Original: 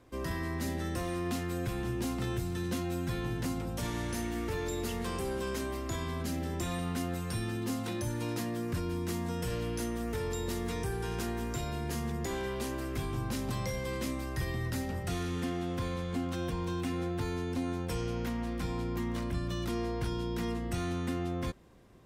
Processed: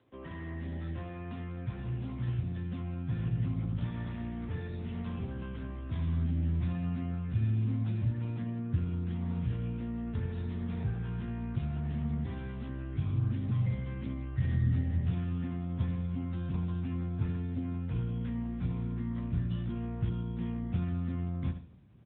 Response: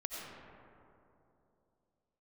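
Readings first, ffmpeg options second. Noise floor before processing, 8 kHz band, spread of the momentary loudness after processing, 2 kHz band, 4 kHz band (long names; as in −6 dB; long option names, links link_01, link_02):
−37 dBFS, below −35 dB, 8 LU, −9.5 dB, below −10 dB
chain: -af "aecho=1:1:73|146|219|292:0.316|0.123|0.0481|0.0188,asubboost=boost=10.5:cutoff=130,volume=-7dB" -ar 8000 -c:a libopencore_amrnb -b:a 10200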